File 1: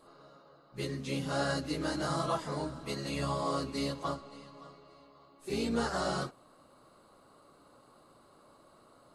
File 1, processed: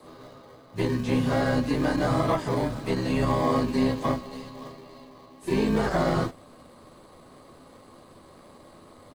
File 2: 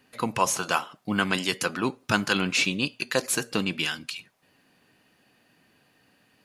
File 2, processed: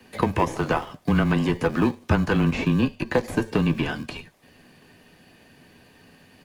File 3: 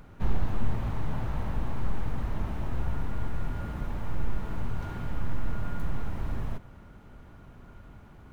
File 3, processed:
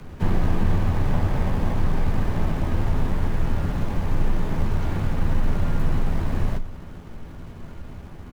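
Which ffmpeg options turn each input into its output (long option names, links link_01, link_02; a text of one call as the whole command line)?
ffmpeg -i in.wav -filter_complex "[0:a]acrossover=split=90|1200[link_01][link_02][link_03];[link_01]acompressor=threshold=-32dB:ratio=4[link_04];[link_02]acompressor=threshold=-30dB:ratio=4[link_05];[link_03]acompressor=threshold=-38dB:ratio=4[link_06];[link_04][link_05][link_06]amix=inputs=3:normalize=0,bandreject=frequency=1400:width=12,asplit=2[link_07][link_08];[link_08]acrusher=samples=32:mix=1:aa=0.000001,volume=-5dB[link_09];[link_07][link_09]amix=inputs=2:normalize=0,acrossover=split=2600[link_10][link_11];[link_11]acompressor=threshold=-50dB:ratio=4:attack=1:release=60[link_12];[link_10][link_12]amix=inputs=2:normalize=0,afreqshift=-20,asplit=2[link_13][link_14];[link_14]adelay=12,volume=-11dB[link_15];[link_13][link_15]amix=inputs=2:normalize=0,volume=8dB" -ar 44100 -c:a nellymoser out.flv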